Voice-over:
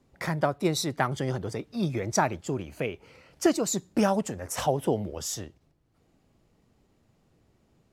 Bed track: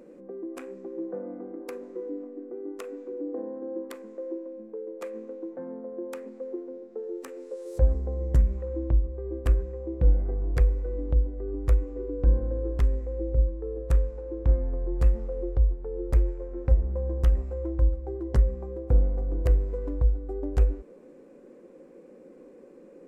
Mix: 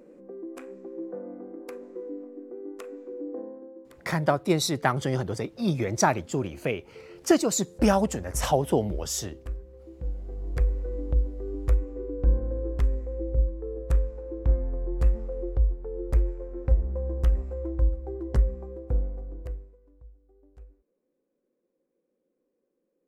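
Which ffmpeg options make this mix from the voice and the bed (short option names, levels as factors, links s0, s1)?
-filter_complex "[0:a]adelay=3850,volume=1.33[s0];[1:a]volume=2.99,afade=t=out:st=3.38:d=0.36:silence=0.298538,afade=t=in:st=10.15:d=0.65:silence=0.266073,afade=t=out:st=18.37:d=1.4:silence=0.0473151[s1];[s0][s1]amix=inputs=2:normalize=0"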